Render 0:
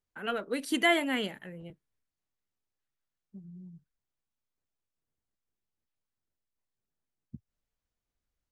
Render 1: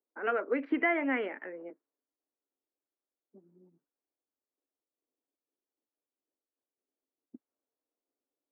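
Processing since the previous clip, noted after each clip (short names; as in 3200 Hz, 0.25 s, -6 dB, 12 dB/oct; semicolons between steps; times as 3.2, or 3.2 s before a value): low-pass opened by the level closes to 600 Hz, open at -30 dBFS; compressor 4:1, threshold -31 dBFS, peak gain reduction 9.5 dB; Chebyshev band-pass 270–2300 Hz, order 4; gain +6 dB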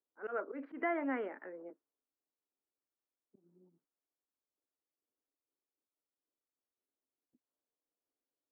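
resonant high shelf 1800 Hz -7.5 dB, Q 1.5; auto swell 0.107 s; gain -5 dB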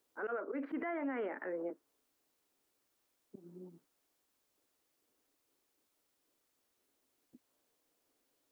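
compressor 2:1, threshold -55 dBFS, peak gain reduction 13.5 dB; limiter -46 dBFS, peak gain reduction 10.5 dB; gain +15 dB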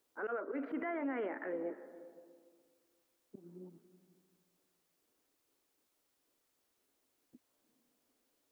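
reverb RT60 1.9 s, pre-delay 0.233 s, DRR 14.5 dB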